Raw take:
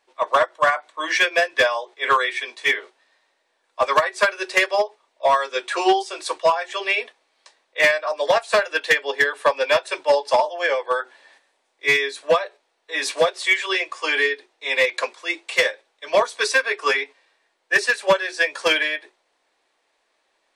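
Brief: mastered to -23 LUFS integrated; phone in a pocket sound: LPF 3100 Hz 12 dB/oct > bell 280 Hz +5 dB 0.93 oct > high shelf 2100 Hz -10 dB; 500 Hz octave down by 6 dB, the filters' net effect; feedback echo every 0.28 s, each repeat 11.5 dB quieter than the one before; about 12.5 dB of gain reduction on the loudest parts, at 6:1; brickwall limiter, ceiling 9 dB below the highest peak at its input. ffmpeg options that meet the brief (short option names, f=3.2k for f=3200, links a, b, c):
-af "equalizer=f=500:t=o:g=-8,acompressor=threshold=-28dB:ratio=6,alimiter=level_in=1dB:limit=-24dB:level=0:latency=1,volume=-1dB,lowpass=3.1k,equalizer=f=280:t=o:w=0.93:g=5,highshelf=f=2.1k:g=-10,aecho=1:1:280|560|840:0.266|0.0718|0.0194,volume=15.5dB"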